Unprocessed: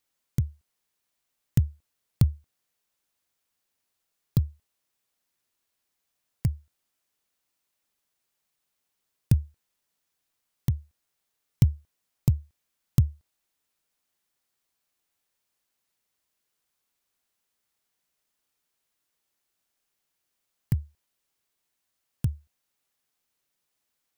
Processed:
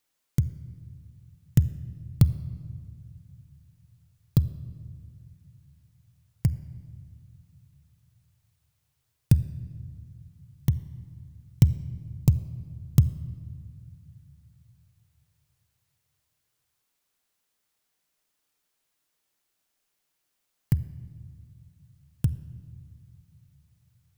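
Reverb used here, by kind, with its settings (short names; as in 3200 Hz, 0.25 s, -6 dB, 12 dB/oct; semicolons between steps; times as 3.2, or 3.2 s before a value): shoebox room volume 3700 m³, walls mixed, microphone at 0.47 m; gain +2 dB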